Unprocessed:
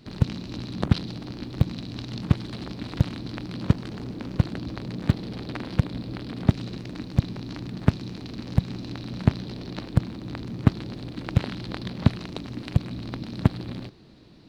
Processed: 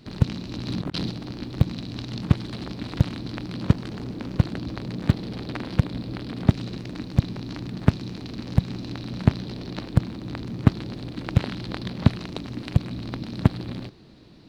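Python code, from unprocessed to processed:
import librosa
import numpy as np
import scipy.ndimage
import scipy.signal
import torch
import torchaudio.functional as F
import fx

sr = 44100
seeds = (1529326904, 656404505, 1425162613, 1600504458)

y = fx.over_compress(x, sr, threshold_db=-33.0, ratio=-1.0, at=(0.66, 1.1))
y = y * librosa.db_to_amplitude(1.5)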